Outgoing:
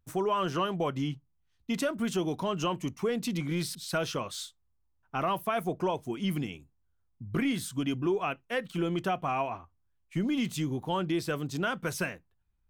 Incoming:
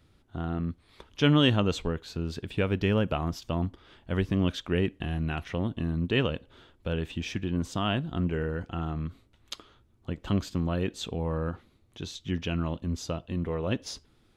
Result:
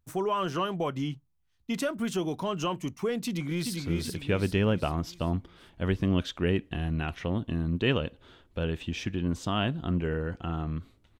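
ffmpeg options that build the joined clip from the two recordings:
-filter_complex "[0:a]apad=whole_dur=11.19,atrim=end=11.19,atrim=end=3.772[a];[1:a]atrim=start=2.058:end=9.48[b];[a][b]acrossfade=d=0.004:c1=hsin:c2=hsin,asplit=2[c][d];[d]afade=t=in:st=3.26:d=0.01,afade=t=out:st=3.77:d=0.01,aecho=0:1:390|780|1170|1560|1950|2340:0.707946|0.318576|0.143359|0.0645116|0.0290302|0.0130636[e];[c][e]amix=inputs=2:normalize=0"

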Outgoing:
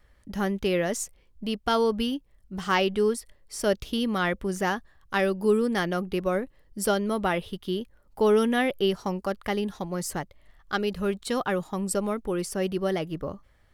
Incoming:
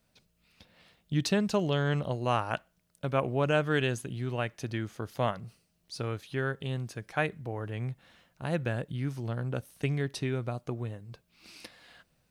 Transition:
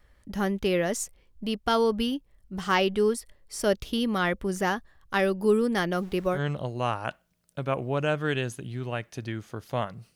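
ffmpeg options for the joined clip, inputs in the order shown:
-filter_complex "[0:a]asettb=1/sr,asplit=3[a][b][c];[a]atrim=end=5.924[d];[b]atrim=start=5.92:end=6.4,asetpts=PTS-STARTPTS,afade=t=in:d=0.004:c=qsin,afade=t=out:st=0.476:d=0.004:c=qsin,aeval=exprs='val(0)*gte(abs(val(0)),0.00473)':c=same[e];[c]atrim=start=6.396[f];[d][e]acrossfade=d=0.004:c1=hsin:c2=qsin[g];[g][f]acrossfade=d=0.004:c1=qsin:c2=hsin,apad=whole_dur=10.15,atrim=end=10.15,atrim=end=6.4,asetpts=PTS-STARTPTS[h];[1:a]atrim=start=1.78:end=5.61,asetpts=PTS-STARTPTS[i];[h][i]acrossfade=d=0.08:c1=tri:c2=tri"

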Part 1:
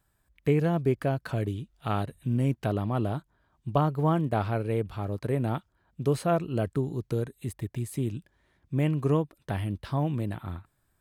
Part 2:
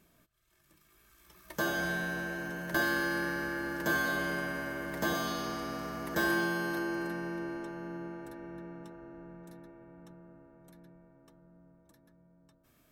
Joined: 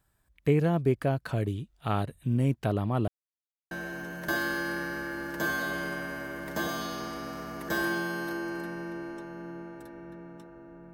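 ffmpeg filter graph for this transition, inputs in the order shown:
-filter_complex "[0:a]apad=whole_dur=10.93,atrim=end=10.93,asplit=2[a][b];[a]atrim=end=3.08,asetpts=PTS-STARTPTS,afade=t=out:st=3.076:d=0.004:c=hsin[c];[b]atrim=start=3.08:end=3.71,asetpts=PTS-STARTPTS,volume=0[d];[1:a]atrim=start=2.17:end=9.39,asetpts=PTS-STARTPTS,afade=t=in:d=0.004:c=hsin[e];[c][d][e]concat=n=3:v=0:a=1"

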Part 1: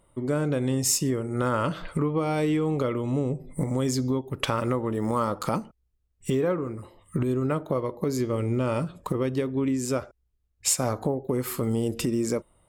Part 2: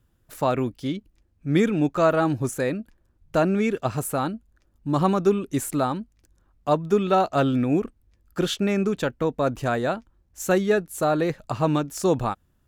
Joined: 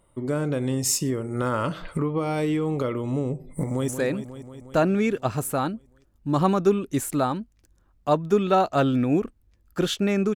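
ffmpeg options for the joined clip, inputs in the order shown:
-filter_complex "[0:a]apad=whole_dur=10.35,atrim=end=10.35,atrim=end=3.882[a];[1:a]atrim=start=2.478:end=8.95[b];[a][b]acrossfade=d=0.004:c1=hsin:c2=hsin,asplit=2[c][d];[d]afade=t=in:st=3.63:d=0.01,afade=t=out:st=3.88:d=0.01,aecho=0:1:180|360|540|720|900|1080|1260|1440|1620|1800|1980|2160:0.354813|0.26611|0.199583|0.149687|0.112265|0.0841989|0.0631492|0.0473619|0.0355214|0.0266411|0.0199808|0.0149856[e];[c][e]amix=inputs=2:normalize=0"

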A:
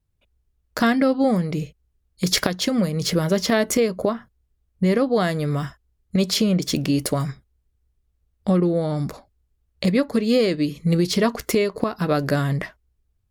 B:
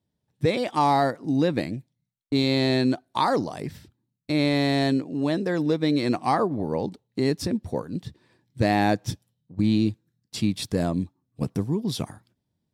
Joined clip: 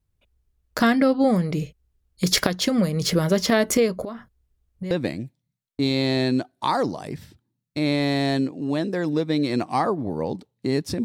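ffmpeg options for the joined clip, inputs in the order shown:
-filter_complex "[0:a]asettb=1/sr,asplit=3[a][b][c];[a]atrim=end=4.034[d];[b]atrim=start=4.03:end=4.91,asetpts=PTS-STARTPTS,afade=t=in:d=0.004:c=qsin,afade=t=out:st=0.876:d=0.004:c=qsin,acompressor=threshold=-30dB:ratio=4:attack=3.2:release=140:knee=1:detection=peak[e];[c]atrim=start=4.906[f];[d][e]acrossfade=d=0.004:c1=hsin:c2=qsin[g];[g][f]acrossfade=d=0.004:c1=qsin:c2=hsin,apad=whole_dur=11.04,atrim=end=11.04,atrim=end=4.912[h];[1:a]atrim=start=1.438:end=7.57[i];[h][i]acrossfade=d=0.004:c1=hsin:c2=hsin"

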